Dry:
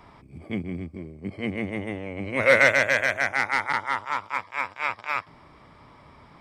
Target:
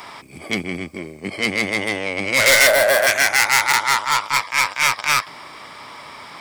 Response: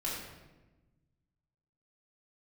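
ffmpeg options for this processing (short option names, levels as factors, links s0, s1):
-filter_complex "[0:a]asplit=2[s0][s1];[s1]highpass=f=720:p=1,volume=25.1,asoftclip=type=tanh:threshold=0.75[s2];[s0][s2]amix=inputs=2:normalize=0,lowpass=f=6800:p=1,volume=0.501,crystalizer=i=4:c=0,asettb=1/sr,asplit=3[s3][s4][s5];[s3]atrim=end=2.674[s6];[s4]atrim=start=2.67:end=3.07,asetpts=PTS-STARTPTS,afade=t=in:d=0.004:c=qsin,afade=t=out:st=0.396:d=0.004:c=qsin,equalizer=f=100:t=o:w=0.67:g=-11,equalizer=f=630:t=o:w=0.67:g=8,equalizer=f=2500:t=o:w=0.67:g=-9,equalizer=f=6300:t=o:w=0.67:g=-12[s7];[s5]atrim=start=3.066[s8];[s6][s7]acrossfade=d=0.004:c1=hsin:c2=qsin[s9];[s9][s8]acrossfade=d=0.004:c1=qsin:c2=hsin,volume=0.422"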